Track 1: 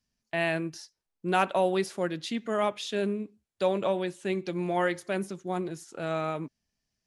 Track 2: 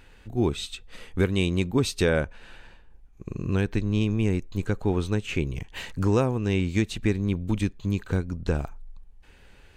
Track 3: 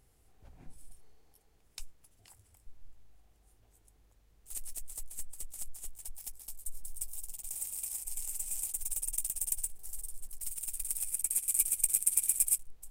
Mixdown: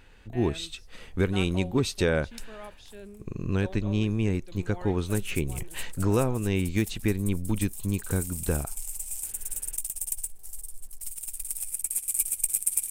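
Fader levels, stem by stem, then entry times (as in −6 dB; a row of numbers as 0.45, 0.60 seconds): −16.5, −2.0, +2.0 decibels; 0.00, 0.00, 0.60 seconds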